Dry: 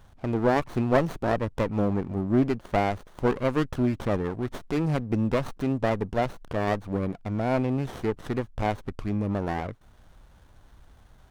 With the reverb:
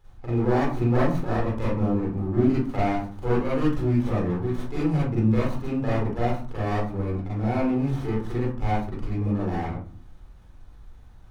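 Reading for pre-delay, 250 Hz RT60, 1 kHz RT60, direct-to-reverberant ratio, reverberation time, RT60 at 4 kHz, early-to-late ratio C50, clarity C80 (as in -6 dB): 34 ms, 0.70 s, 0.50 s, -8.0 dB, 0.50 s, 0.25 s, -1.0 dB, 5.5 dB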